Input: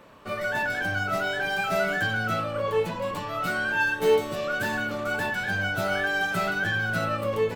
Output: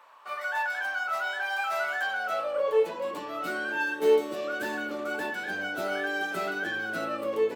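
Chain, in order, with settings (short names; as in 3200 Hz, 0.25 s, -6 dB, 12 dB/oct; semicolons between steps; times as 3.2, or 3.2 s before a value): high-pass sweep 930 Hz -> 320 Hz, 1.88–3.2; gain -5.5 dB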